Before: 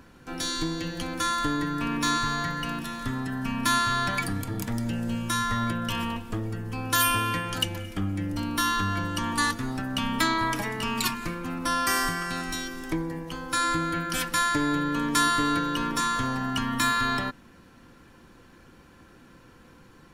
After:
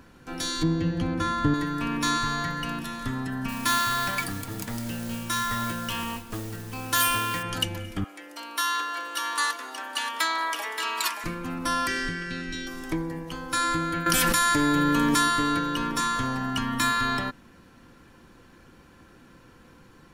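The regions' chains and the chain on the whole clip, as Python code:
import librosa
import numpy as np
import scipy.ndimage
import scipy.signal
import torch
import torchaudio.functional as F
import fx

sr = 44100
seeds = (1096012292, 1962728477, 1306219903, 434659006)

y = fx.chain(x, sr, fx.highpass(hz=73.0, slope=12),
    fx.riaa(side='playback'), at=(0.63, 1.54))
y = fx.chain(y, sr, fx.low_shelf(hz=410.0, db=-5.0),
    fx.mod_noise(seeds[0], snr_db=11), at=(3.48, 7.43))
y = fx.chain(y, sr, fx.bessel_highpass(hz=620.0, order=6),
    fx.echo_single(ms=576, db=-7.0), at=(8.04, 11.24))
y = fx.chain(y, sr, fx.lowpass(hz=4300.0, slope=12),
    fx.band_shelf(hz=890.0, db=-16.0, octaves=1.2), at=(11.87, 12.67))
y = fx.chain(y, sr, fx.high_shelf(hz=8500.0, db=8.5),
    fx.env_flatten(amount_pct=100), at=(14.06, 15.15))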